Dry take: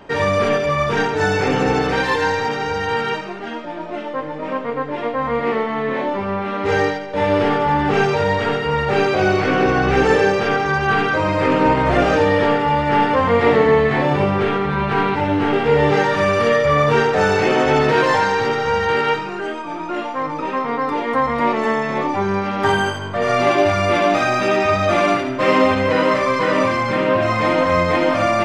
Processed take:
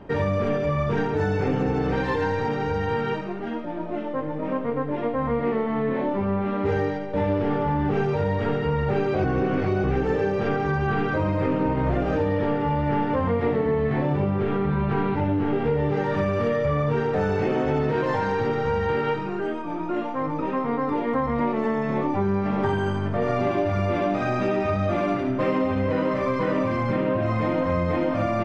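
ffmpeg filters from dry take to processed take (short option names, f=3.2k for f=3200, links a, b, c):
-filter_complex "[0:a]asplit=2[a][b];[b]afade=t=in:st=21.85:d=0.01,afade=t=out:st=22.48:d=0.01,aecho=0:1:600|1200|1800|2400|3000|3600|4200|4800|5400:0.421697|0.274103|0.178167|0.115808|0.0752755|0.048929|0.0318039|0.0206725|0.0134371[c];[a][c]amix=inputs=2:normalize=0,asplit=3[d][e][f];[d]atrim=end=9.242[g];[e]atrim=start=9.238:end=9.842,asetpts=PTS-STARTPTS,areverse[h];[f]atrim=start=9.838[i];[g][h]acrossfade=d=0.004:c1=hsin:c2=hsin[j];[j][i]acrossfade=d=0.004:c1=hsin:c2=hsin,lowshelf=f=430:g=12,acompressor=threshold=-12dB:ratio=6,highshelf=f=4.5k:g=-10.5,volume=-7.5dB"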